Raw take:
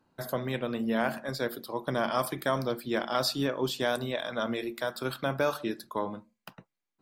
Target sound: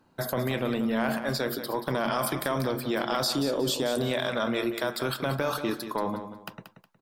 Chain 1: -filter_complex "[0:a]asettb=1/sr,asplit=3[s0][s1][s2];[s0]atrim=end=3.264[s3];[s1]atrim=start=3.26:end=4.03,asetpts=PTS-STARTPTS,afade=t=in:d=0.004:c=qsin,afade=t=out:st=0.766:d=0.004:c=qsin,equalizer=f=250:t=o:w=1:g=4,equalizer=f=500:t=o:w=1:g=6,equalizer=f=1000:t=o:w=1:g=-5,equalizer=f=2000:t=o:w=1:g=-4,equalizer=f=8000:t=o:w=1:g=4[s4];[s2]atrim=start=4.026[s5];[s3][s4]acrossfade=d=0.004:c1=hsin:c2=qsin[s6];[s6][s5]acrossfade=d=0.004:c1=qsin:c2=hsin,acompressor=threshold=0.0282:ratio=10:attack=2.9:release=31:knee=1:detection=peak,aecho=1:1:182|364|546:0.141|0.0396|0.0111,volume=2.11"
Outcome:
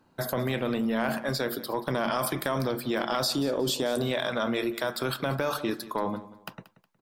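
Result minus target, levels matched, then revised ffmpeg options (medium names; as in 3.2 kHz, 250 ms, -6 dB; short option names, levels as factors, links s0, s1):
echo-to-direct -7 dB
-filter_complex "[0:a]asettb=1/sr,asplit=3[s0][s1][s2];[s0]atrim=end=3.264[s3];[s1]atrim=start=3.26:end=4.03,asetpts=PTS-STARTPTS,afade=t=in:d=0.004:c=qsin,afade=t=out:st=0.766:d=0.004:c=qsin,equalizer=f=250:t=o:w=1:g=4,equalizer=f=500:t=o:w=1:g=6,equalizer=f=1000:t=o:w=1:g=-5,equalizer=f=2000:t=o:w=1:g=-4,equalizer=f=8000:t=o:w=1:g=4[s4];[s2]atrim=start=4.026[s5];[s3][s4]acrossfade=d=0.004:c1=hsin:c2=qsin[s6];[s6][s5]acrossfade=d=0.004:c1=qsin:c2=hsin,acompressor=threshold=0.0282:ratio=10:attack=2.9:release=31:knee=1:detection=peak,aecho=1:1:182|364|546:0.316|0.0885|0.0248,volume=2.11"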